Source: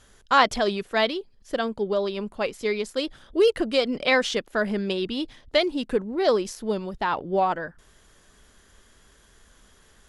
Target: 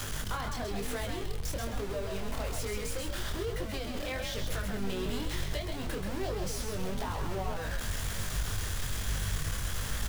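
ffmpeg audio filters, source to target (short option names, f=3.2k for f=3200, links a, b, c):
-filter_complex "[0:a]aeval=exprs='val(0)+0.5*0.119*sgn(val(0))':c=same,asubboost=boost=8.5:cutoff=83,acrossover=split=210|1800[a][b][c];[a]acompressor=threshold=-24dB:ratio=6[d];[d][b][c]amix=inputs=3:normalize=0,aeval=exprs='val(0)+0.0251*(sin(2*PI*50*n/s)+sin(2*PI*2*50*n/s)/2+sin(2*PI*3*50*n/s)/3+sin(2*PI*4*50*n/s)/4+sin(2*PI*5*50*n/s)/5)':c=same,acrossover=split=170[e][f];[f]acompressor=threshold=-26dB:ratio=5[g];[e][g]amix=inputs=2:normalize=0,flanger=delay=19.5:depth=7.7:speed=1.1,asplit=5[h][i][j][k][l];[i]adelay=132,afreqshift=51,volume=-5.5dB[m];[j]adelay=264,afreqshift=102,volume=-15.4dB[n];[k]adelay=396,afreqshift=153,volume=-25.3dB[o];[l]adelay=528,afreqshift=204,volume=-35.2dB[p];[h][m][n][o][p]amix=inputs=5:normalize=0,volume=-7.5dB"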